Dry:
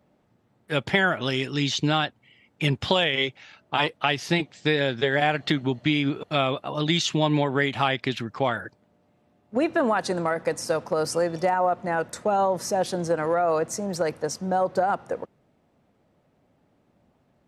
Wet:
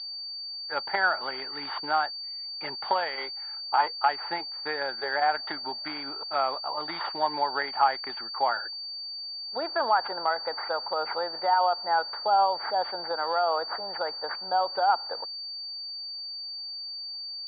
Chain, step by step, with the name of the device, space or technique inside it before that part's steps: toy sound module (decimation joined by straight lines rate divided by 6×; pulse-width modulation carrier 4600 Hz; speaker cabinet 760–4000 Hz, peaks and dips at 850 Hz +10 dB, 1400 Hz +5 dB, 2600 Hz -8 dB); gain -1.5 dB

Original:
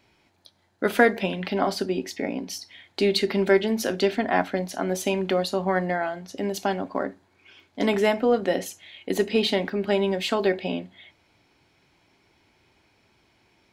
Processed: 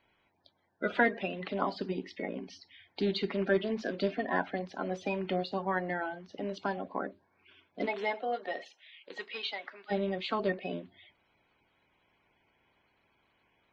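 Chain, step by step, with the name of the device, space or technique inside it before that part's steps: clip after many re-uploads (LPF 4200 Hz 24 dB/oct; bin magnitudes rounded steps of 30 dB); 7.85–9.9 HPF 450 Hz -> 1200 Hz 12 dB/oct; bell 1100 Hz +3 dB 0.36 oct; gain -8 dB

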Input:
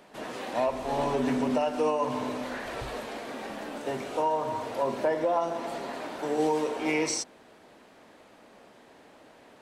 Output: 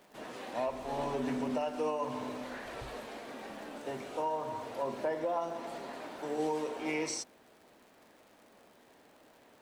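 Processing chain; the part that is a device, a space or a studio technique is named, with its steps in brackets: vinyl LP (crackle 120/s -44 dBFS; white noise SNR 40 dB); gain -7 dB

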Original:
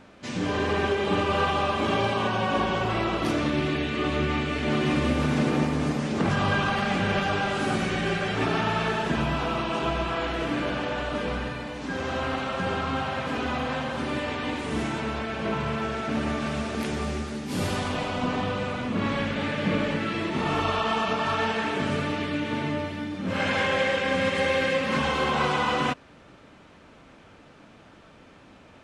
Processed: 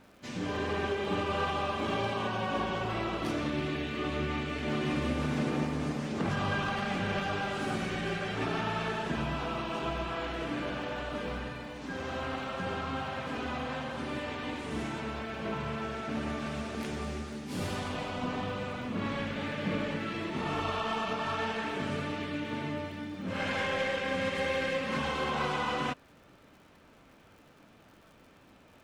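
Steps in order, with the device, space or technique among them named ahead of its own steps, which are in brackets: record under a worn stylus (tracing distortion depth 0.024 ms; crackle 110/s -45 dBFS; pink noise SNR 42 dB); gain -7 dB

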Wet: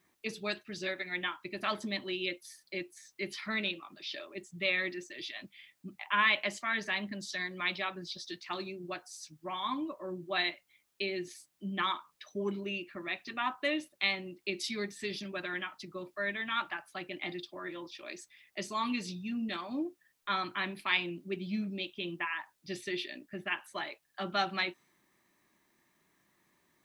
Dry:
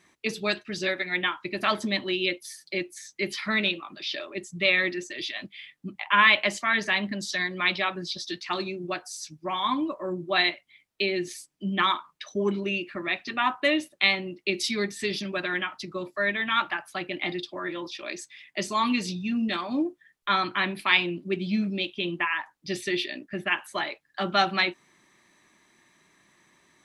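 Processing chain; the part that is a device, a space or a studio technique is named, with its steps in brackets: plain cassette with noise reduction switched in (mismatched tape noise reduction decoder only; wow and flutter 11 cents; white noise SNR 41 dB); gain -8.5 dB

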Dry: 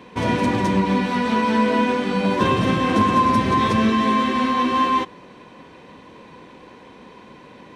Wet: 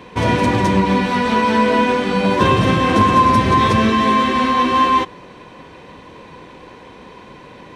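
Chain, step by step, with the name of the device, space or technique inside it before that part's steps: low shelf boost with a cut just above (low shelf 95 Hz +6 dB; bell 230 Hz -4.5 dB 0.71 oct); gain +5 dB

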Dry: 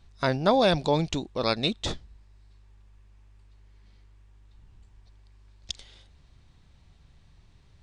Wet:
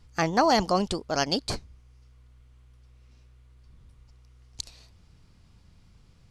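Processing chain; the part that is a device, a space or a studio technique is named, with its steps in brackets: nightcore (varispeed +24%)

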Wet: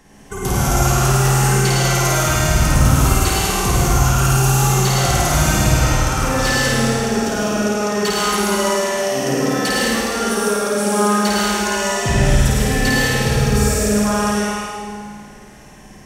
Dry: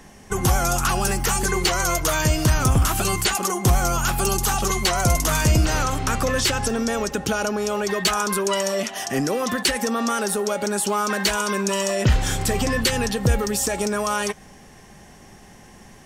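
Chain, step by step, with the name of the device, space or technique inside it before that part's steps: tunnel (flutter echo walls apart 9.1 m, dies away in 1.4 s; reverb RT60 2.1 s, pre-delay 80 ms, DRR -4.5 dB); gain -5 dB

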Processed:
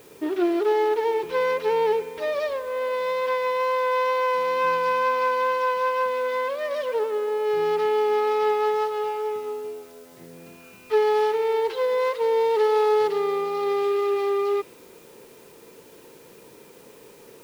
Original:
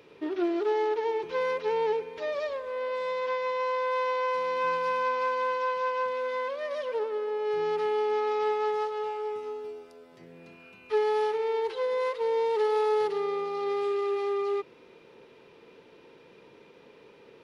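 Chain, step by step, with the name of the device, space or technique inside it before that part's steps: plain cassette with noise reduction switched in (mismatched tape noise reduction decoder only; wow and flutter 8.7 cents; white noise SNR 31 dB); gain +5.5 dB

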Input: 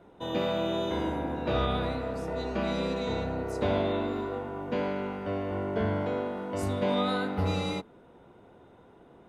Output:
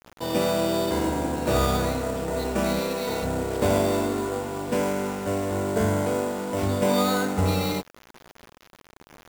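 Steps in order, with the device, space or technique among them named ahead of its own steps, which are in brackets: 2.79–3.23 low shelf 200 Hz -11.5 dB; early 8-bit sampler (sample-rate reducer 8200 Hz, jitter 0%; bit-crush 8-bit); gain +5.5 dB

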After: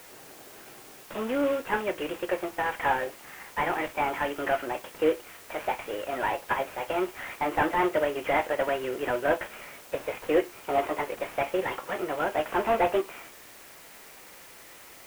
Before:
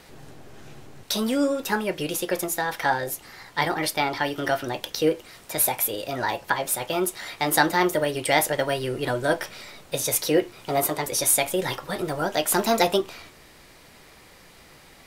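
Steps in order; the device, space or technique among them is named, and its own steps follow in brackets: army field radio (BPF 350–3200 Hz; CVSD 16 kbps; white noise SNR 21 dB)

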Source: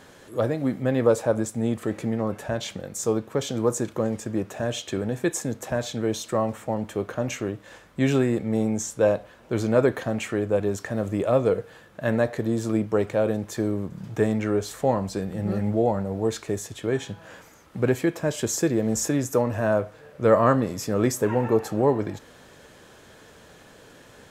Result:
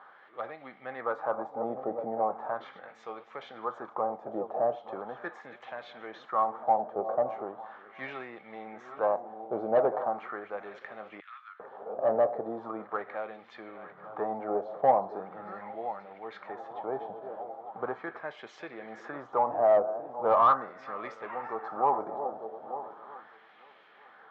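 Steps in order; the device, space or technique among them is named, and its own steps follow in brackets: regenerating reverse delay 0.45 s, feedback 65%, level -14 dB; 11.2–11.6 Bessel high-pass 2500 Hz, order 8; wah-wah guitar rig (wah 0.39 Hz 630–2400 Hz, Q 2.4; tube stage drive 22 dB, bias 0.2; speaker cabinet 100–3500 Hz, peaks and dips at 100 Hz -7 dB, 270 Hz -3 dB, 780 Hz +10 dB, 1200 Hz +6 dB, 1700 Hz -5 dB, 2600 Hz -8 dB); dynamic EQ 3000 Hz, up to -6 dB, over -55 dBFS, Q 1.4; gain +2.5 dB

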